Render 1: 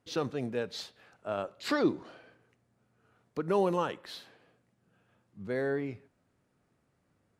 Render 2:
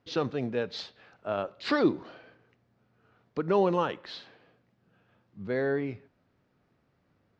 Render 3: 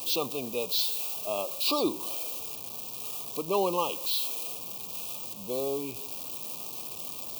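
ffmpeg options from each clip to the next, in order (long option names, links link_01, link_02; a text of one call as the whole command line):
ffmpeg -i in.wav -af "lowpass=frequency=5200:width=0.5412,lowpass=frequency=5200:width=1.3066,volume=3dB" out.wav
ffmpeg -i in.wav -af "aeval=exprs='val(0)+0.5*0.0112*sgn(val(0))':channel_layout=same,asuperstop=centerf=1700:order=20:qfactor=1.5,aemphasis=mode=production:type=riaa" out.wav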